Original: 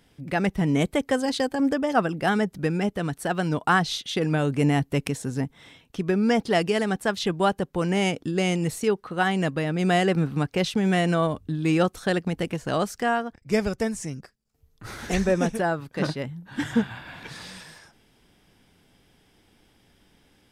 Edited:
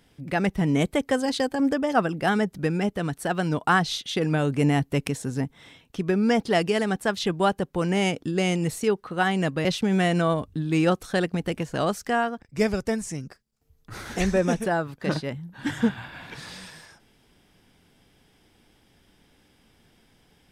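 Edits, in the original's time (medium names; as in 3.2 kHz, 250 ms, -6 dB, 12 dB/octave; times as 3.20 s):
9.65–10.58 s: delete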